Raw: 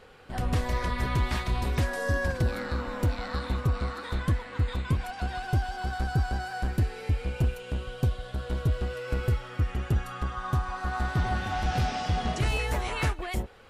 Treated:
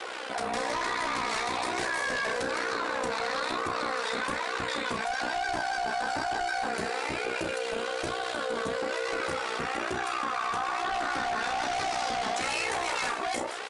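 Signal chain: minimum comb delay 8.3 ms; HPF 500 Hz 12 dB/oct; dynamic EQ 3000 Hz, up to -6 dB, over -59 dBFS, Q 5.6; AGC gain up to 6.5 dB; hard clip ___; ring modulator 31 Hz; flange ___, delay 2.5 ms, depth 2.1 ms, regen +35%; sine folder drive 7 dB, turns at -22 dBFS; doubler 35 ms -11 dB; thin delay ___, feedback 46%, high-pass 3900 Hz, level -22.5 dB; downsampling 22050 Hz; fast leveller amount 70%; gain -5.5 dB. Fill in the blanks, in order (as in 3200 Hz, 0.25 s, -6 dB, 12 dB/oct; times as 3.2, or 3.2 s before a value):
-21 dBFS, 1.1 Hz, 0.167 s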